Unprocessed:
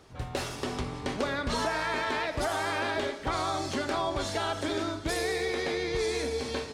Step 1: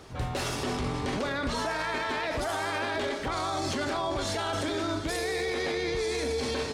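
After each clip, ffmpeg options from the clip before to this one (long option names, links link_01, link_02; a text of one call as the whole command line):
ffmpeg -i in.wav -af "alimiter=level_in=5.5dB:limit=-24dB:level=0:latency=1:release=12,volume=-5.5dB,volume=7dB" out.wav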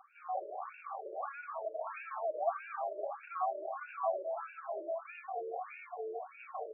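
ffmpeg -i in.wav -filter_complex "[0:a]asplit=3[link_01][link_02][link_03];[link_01]bandpass=frequency=730:width_type=q:width=8,volume=0dB[link_04];[link_02]bandpass=frequency=1090:width_type=q:width=8,volume=-6dB[link_05];[link_03]bandpass=frequency=2440:width_type=q:width=8,volume=-9dB[link_06];[link_04][link_05][link_06]amix=inputs=3:normalize=0,afftfilt=real='re*between(b*sr/1024,440*pow(2000/440,0.5+0.5*sin(2*PI*1.6*pts/sr))/1.41,440*pow(2000/440,0.5+0.5*sin(2*PI*1.6*pts/sr))*1.41)':imag='im*between(b*sr/1024,440*pow(2000/440,0.5+0.5*sin(2*PI*1.6*pts/sr))/1.41,440*pow(2000/440,0.5+0.5*sin(2*PI*1.6*pts/sr))*1.41)':win_size=1024:overlap=0.75,volume=6.5dB" out.wav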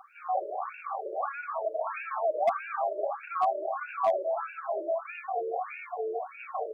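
ffmpeg -i in.wav -af "asoftclip=type=hard:threshold=-26dB,volume=8dB" out.wav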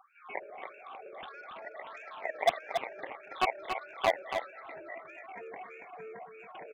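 ffmpeg -i in.wav -af "aeval=exprs='0.133*(cos(1*acos(clip(val(0)/0.133,-1,1)))-cos(1*PI/2))+0.0596*(cos(3*acos(clip(val(0)/0.133,-1,1)))-cos(3*PI/2))':channel_layout=same,aecho=1:1:281:0.447" out.wav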